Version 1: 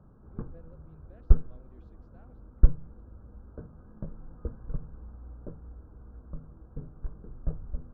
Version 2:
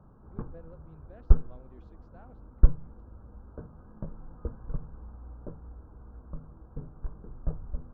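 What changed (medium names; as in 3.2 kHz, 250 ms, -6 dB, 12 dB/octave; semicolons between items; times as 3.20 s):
speech +4.0 dB; master: add peaking EQ 930 Hz +5.5 dB 0.87 oct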